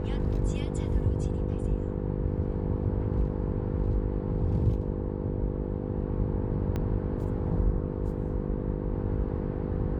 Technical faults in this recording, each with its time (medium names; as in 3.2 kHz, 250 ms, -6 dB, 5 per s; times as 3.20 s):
buzz 50 Hz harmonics 10 -33 dBFS
6.76 s: pop -20 dBFS